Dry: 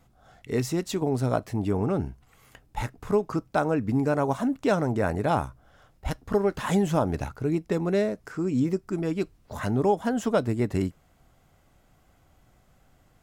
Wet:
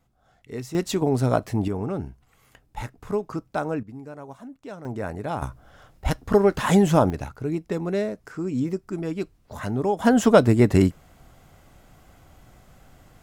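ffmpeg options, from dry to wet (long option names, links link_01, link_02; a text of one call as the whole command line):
ffmpeg -i in.wav -af "asetnsamples=nb_out_samples=441:pad=0,asendcmd='0.75 volume volume 4dB;1.68 volume volume -2.5dB;3.83 volume volume -15dB;4.85 volume volume -5dB;5.42 volume volume 6dB;7.1 volume volume -1dB;9.99 volume volume 9dB',volume=-7dB" out.wav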